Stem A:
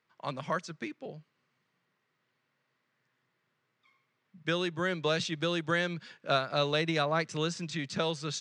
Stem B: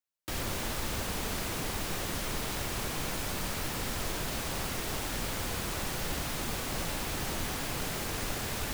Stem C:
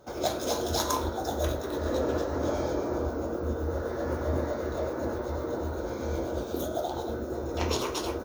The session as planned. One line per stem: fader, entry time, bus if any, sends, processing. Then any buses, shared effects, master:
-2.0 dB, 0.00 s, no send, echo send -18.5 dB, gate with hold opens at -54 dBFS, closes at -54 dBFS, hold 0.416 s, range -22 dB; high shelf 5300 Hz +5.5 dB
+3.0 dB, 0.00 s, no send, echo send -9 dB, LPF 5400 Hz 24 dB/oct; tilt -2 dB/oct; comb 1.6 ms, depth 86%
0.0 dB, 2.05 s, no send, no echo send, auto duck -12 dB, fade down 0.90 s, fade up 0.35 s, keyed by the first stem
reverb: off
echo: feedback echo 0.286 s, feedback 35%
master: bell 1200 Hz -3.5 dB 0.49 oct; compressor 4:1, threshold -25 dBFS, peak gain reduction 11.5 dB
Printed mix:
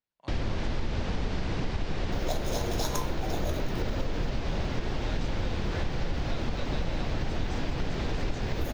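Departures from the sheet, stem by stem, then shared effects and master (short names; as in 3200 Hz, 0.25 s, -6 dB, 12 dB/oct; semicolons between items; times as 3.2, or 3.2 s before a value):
stem A -2.0 dB -> -13.5 dB; stem B: missing comb 1.6 ms, depth 86%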